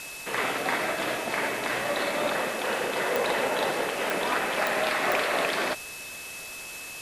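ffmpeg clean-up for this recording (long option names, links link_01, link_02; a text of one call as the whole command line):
ffmpeg -i in.wav -af "adeclick=threshold=4,bandreject=frequency=2600:width=30,afwtdn=0.01" out.wav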